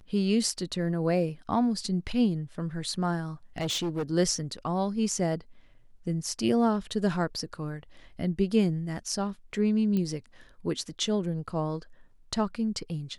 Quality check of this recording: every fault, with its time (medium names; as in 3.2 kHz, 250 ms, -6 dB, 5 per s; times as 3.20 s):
3.58–4.03 s: clipped -26 dBFS
9.97 s: pop -19 dBFS